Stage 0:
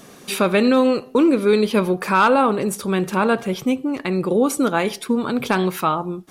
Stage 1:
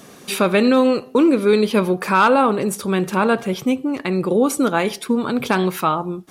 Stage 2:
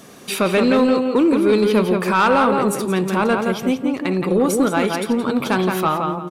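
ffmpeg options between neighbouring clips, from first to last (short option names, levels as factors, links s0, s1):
-af "highpass=41,volume=1.12"
-filter_complex "[0:a]asplit=2[s0][s1];[s1]adelay=171,lowpass=f=3700:p=1,volume=0.596,asplit=2[s2][s3];[s3]adelay=171,lowpass=f=3700:p=1,volume=0.28,asplit=2[s4][s5];[s5]adelay=171,lowpass=f=3700:p=1,volume=0.28,asplit=2[s6][s7];[s7]adelay=171,lowpass=f=3700:p=1,volume=0.28[s8];[s0][s2][s4][s6][s8]amix=inputs=5:normalize=0,asoftclip=type=tanh:threshold=0.422"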